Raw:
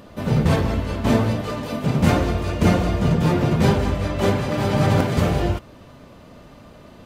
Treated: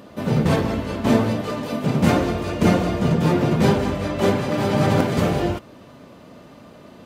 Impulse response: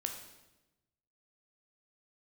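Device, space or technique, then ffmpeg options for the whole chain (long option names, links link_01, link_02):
filter by subtraction: -filter_complex "[0:a]asplit=2[link_01][link_02];[link_02]lowpass=240,volume=-1[link_03];[link_01][link_03]amix=inputs=2:normalize=0"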